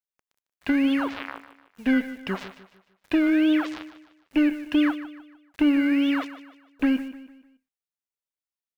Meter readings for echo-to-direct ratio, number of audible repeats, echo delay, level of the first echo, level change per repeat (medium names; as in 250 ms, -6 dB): -13.0 dB, 3, 151 ms, -14.0 dB, -8.0 dB